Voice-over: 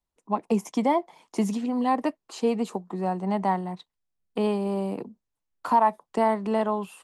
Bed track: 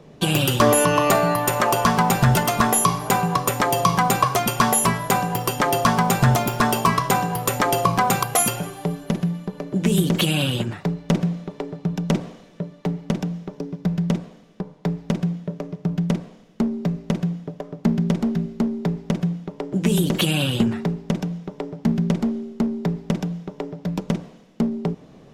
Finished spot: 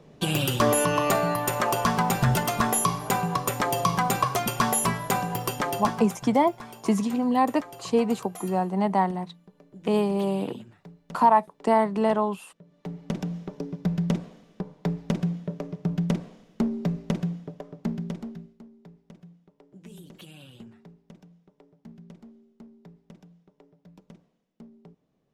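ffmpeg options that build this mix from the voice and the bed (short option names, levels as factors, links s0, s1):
-filter_complex "[0:a]adelay=5500,volume=1.26[s0];[1:a]volume=5.31,afade=t=out:st=5.47:d=0.71:silence=0.125893,afade=t=in:st=12.64:d=0.74:silence=0.1,afade=t=out:st=17:d=1.6:silence=0.0707946[s1];[s0][s1]amix=inputs=2:normalize=0"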